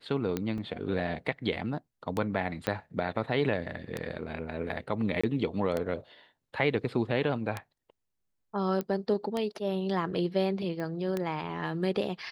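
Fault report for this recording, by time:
tick 33 1/3 rpm -17 dBFS
0.58 s: dropout 2.7 ms
2.67 s: pop -14 dBFS
5.21–5.24 s: dropout 25 ms
8.81 s: pop -20 dBFS
10.80 s: pop -25 dBFS

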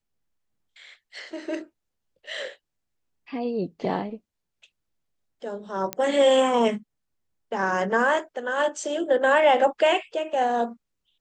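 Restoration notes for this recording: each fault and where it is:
5.93 s: pop -10 dBFS

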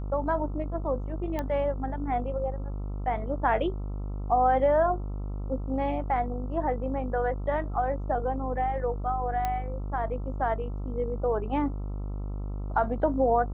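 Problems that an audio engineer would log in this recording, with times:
buzz 50 Hz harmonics 27 -33 dBFS
1.39 s: pop -18 dBFS
9.45 s: pop -16 dBFS

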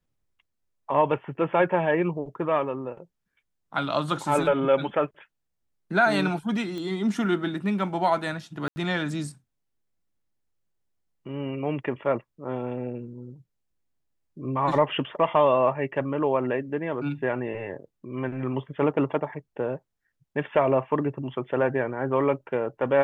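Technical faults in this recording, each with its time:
6.78 s: pop -23 dBFS
8.68–8.76 s: dropout 80 ms

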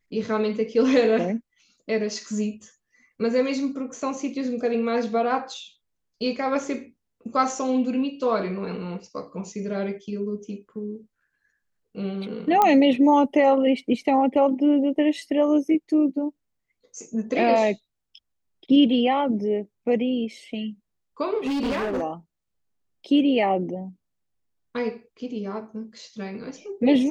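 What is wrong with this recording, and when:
12.62 s: pop -7 dBFS
21.46–22.03 s: clipped -22.5 dBFS

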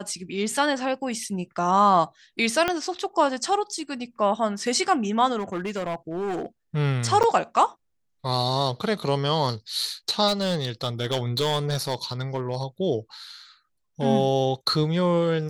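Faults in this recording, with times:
2.68 s: pop -9 dBFS
5.38–6.46 s: clipped -24.5 dBFS
7.23–7.24 s: dropout 7.3 ms
10.27–12.63 s: clipped -19 dBFS

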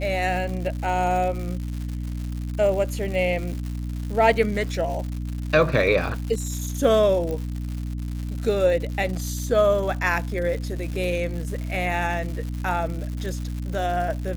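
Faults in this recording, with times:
crackle 210 per s -31 dBFS
hum 60 Hz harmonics 5 -29 dBFS
7.31 s: pop -18 dBFS

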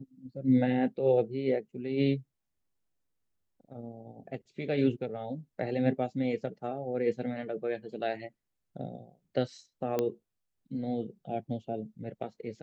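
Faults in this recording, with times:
9.99 s: pop -16 dBFS

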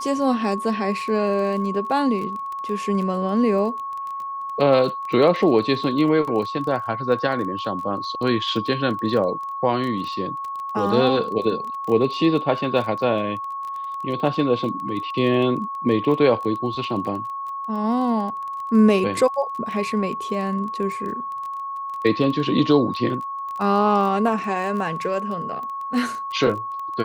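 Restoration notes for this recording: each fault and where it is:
crackle 20 per s -29 dBFS
whine 1.1 kHz -27 dBFS

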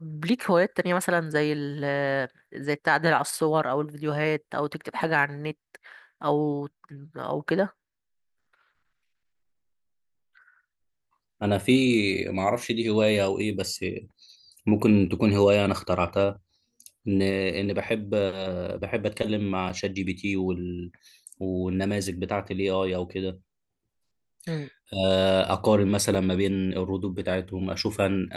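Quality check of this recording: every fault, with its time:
19.69–19.70 s: dropout 6 ms
26.15 s: dropout 2.5 ms

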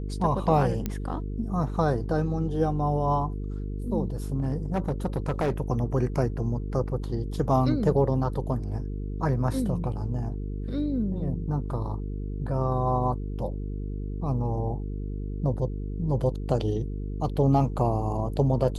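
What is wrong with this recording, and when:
buzz 50 Hz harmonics 9 -32 dBFS
0.86 s: pop -15 dBFS
4.39–5.52 s: clipped -21 dBFS

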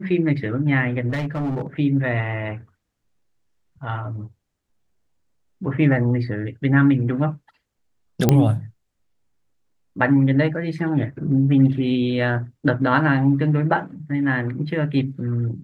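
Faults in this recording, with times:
1.09–1.67 s: clipped -21 dBFS
8.29 s: pop -2 dBFS

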